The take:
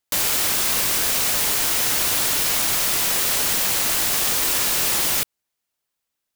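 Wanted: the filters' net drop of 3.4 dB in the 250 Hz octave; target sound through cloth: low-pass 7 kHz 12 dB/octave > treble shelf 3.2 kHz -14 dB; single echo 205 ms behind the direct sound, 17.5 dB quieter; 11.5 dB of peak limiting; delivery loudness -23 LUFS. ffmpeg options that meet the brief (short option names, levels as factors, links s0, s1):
-af "equalizer=f=250:t=o:g=-4.5,alimiter=limit=0.119:level=0:latency=1,lowpass=7000,highshelf=f=3200:g=-14,aecho=1:1:205:0.133,volume=5.01"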